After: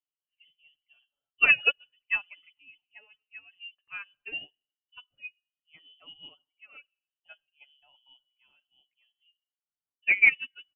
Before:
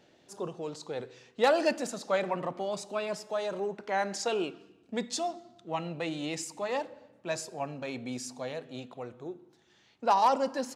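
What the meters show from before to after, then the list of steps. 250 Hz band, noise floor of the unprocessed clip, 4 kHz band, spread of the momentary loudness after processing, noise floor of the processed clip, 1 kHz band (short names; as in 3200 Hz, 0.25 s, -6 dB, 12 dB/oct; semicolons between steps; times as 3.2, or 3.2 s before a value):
-23.5 dB, -64 dBFS, +1.0 dB, 21 LU, under -85 dBFS, -18.0 dB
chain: per-bin expansion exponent 1.5; inverted band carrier 3200 Hz; comb 6.9 ms, depth 39%; upward expander 2.5:1, over -40 dBFS; gain +6.5 dB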